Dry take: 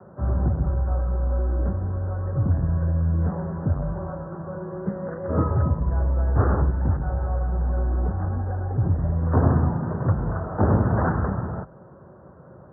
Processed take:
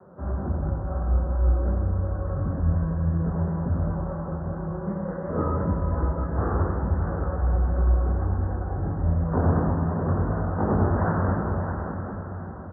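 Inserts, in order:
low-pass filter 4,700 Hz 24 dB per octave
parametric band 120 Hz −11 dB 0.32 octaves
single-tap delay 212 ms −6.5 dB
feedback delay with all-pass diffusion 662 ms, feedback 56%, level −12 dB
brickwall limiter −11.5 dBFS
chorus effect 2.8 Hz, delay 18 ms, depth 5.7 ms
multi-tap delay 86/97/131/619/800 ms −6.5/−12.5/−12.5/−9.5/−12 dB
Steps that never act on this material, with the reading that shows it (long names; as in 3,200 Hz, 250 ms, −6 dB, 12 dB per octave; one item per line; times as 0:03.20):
low-pass filter 4,700 Hz: nothing at its input above 760 Hz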